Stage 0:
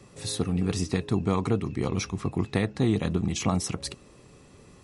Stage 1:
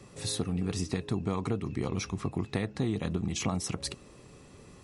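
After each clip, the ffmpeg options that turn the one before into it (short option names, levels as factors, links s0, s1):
-af "acompressor=threshold=0.0355:ratio=2.5"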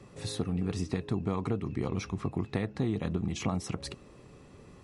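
-af "highshelf=f=4100:g=-9.5"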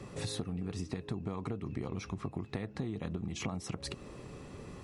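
-af "acompressor=threshold=0.01:ratio=6,volume=1.88"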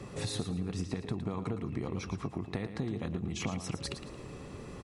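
-af "aecho=1:1:112|224|336|448:0.316|0.101|0.0324|0.0104,volume=1.26"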